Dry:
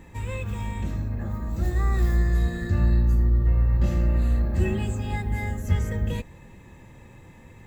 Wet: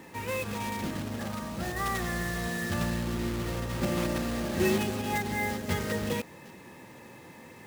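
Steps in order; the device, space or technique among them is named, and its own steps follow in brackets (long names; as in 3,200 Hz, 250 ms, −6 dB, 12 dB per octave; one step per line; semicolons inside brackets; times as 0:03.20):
0:01.18–0:03.07: dynamic equaliser 340 Hz, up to −8 dB, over −48 dBFS, Q 2.3
early digital voice recorder (band-pass filter 230–3,400 Hz; one scale factor per block 3 bits)
level +4 dB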